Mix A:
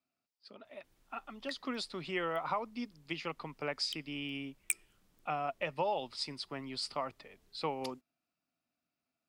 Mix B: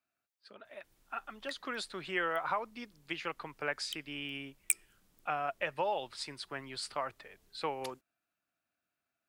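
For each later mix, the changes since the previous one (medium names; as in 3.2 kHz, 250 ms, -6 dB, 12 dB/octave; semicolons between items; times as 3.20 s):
speech: add graphic EQ with 31 bands 160 Hz -6 dB, 250 Hz -8 dB, 1.6 kHz +11 dB, 5 kHz -8 dB; master: add treble shelf 6.3 kHz +6 dB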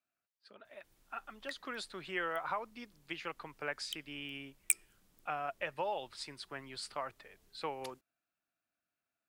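speech -3.5 dB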